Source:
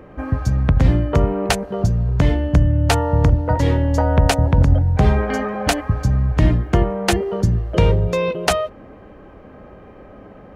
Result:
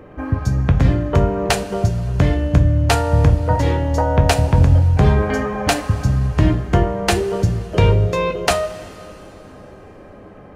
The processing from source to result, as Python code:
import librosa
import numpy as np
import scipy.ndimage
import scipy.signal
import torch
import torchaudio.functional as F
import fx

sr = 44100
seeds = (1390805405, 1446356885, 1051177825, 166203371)

y = fx.rev_double_slope(x, sr, seeds[0], early_s=0.29, late_s=3.3, knee_db=-18, drr_db=5.0)